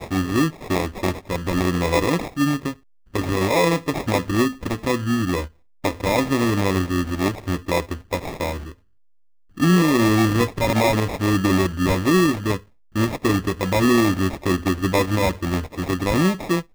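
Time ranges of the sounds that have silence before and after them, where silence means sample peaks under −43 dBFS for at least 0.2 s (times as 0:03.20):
0:03.14–0:05.49
0:05.84–0:08.74
0:09.57–0:12.64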